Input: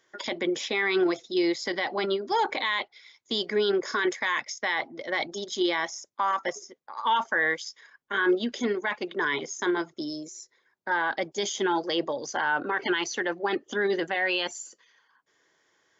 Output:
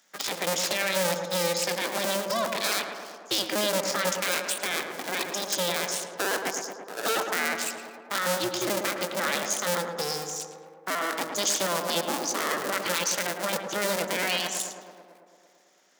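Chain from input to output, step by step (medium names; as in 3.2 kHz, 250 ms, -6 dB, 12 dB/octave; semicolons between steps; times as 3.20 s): cycle switcher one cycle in 2, inverted; bass shelf 210 Hz +4.5 dB; peak limiter -20 dBFS, peak gain reduction 7 dB; high-pass 150 Hz 24 dB/octave; tone controls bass -7 dB, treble +10 dB; tape echo 110 ms, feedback 81%, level -4.5 dB, low-pass 1.8 kHz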